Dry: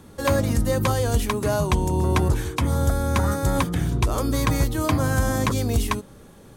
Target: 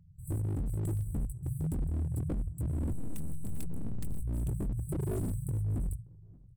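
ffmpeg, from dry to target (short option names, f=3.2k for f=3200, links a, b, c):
-filter_complex "[0:a]bandreject=f=54.3:t=h:w=4,bandreject=f=108.6:t=h:w=4,bandreject=f=162.9:t=h:w=4,bandreject=f=217.2:t=h:w=4,bandreject=f=271.5:t=h:w=4,bandreject=f=325.8:t=h:w=4,bandreject=f=380.1:t=h:w=4,bandreject=f=434.4:t=h:w=4,bandreject=f=488.7:t=h:w=4,bandreject=f=543:t=h:w=4,bandreject=f=597.3:t=h:w=4,adynamicsmooth=sensitivity=6.5:basefreq=570,asettb=1/sr,asplit=3[a][b][c];[a]atrim=end=2.914[d];[b]atrim=start=2.91:end=4.21,asetpts=PTS-STARTPTS,afade=t=in:d=0.004:c=qsin,afade=t=out:st=1.296:d=0.004:c=qsin,aeval=exprs='0.299*(cos(1*acos(clip(val(0)/0.299,-1,1)))-cos(1*PI/2))+0.119*(cos(3*acos(clip(val(0)/0.299,-1,1)))-cos(3*PI/2))+0.0422*(cos(5*acos(clip(val(0)/0.299,-1,1)))-cos(5*PI/2))+0.0668*(cos(8*acos(clip(val(0)/0.299,-1,1)))-cos(8*PI/2))':c=same[e];[c]atrim=start=4.206[f];[d][e]acrossfade=d=0.004:c1=hsin:c2=qsin[g];[g][f]acrossfade=d=0.004:c1=qsin:c2=hsin,asettb=1/sr,asplit=3[h][i][j];[h]atrim=end=4.864[k];[i]atrim=start=4.86:end=5.32,asetpts=PTS-STARTPTS,afade=t=in:d=0.004:c=qsin,afade=t=out:st=0.456:d=0.004:c=qsin,aecho=1:1:7.4:0.91,atrim=end_sample=20286[l];[j]atrim=start=5.316[m];[k][l]acrossfade=d=0.004:c1=hsin:c2=qsin[n];[n][m]acrossfade=d=0.004:c1=qsin:c2=hsin,flanger=delay=17.5:depth=6:speed=2.3,afftfilt=real='re*(1-between(b*sr/4096,180,7700))':imag='im*(1-between(b*sr/4096,180,7700))':win_size=4096:overlap=0.75,aeval=exprs='0.0631*(abs(mod(val(0)/0.0631+3,4)-2)-1)':c=same,asplit=2[o][p];[p]adelay=577,lowpass=f=1.1k:p=1,volume=-24dB,asplit=2[q][r];[r]adelay=577,lowpass=f=1.1k:p=1,volume=0.23[s];[o][q][s]amix=inputs=3:normalize=0,volume=-3dB"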